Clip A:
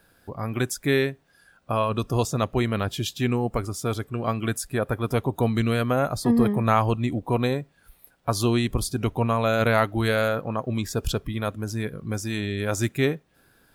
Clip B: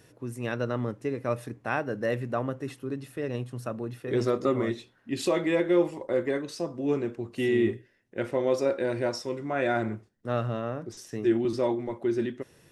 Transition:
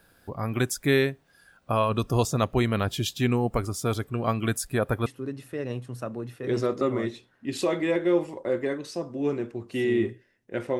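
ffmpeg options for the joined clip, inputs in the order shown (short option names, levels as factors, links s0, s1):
-filter_complex "[0:a]apad=whole_dur=10.79,atrim=end=10.79,atrim=end=5.062[s0];[1:a]atrim=start=2.698:end=8.43[s1];[s0][s1]acrossfade=d=0.004:c1=hsin:c2=hsin"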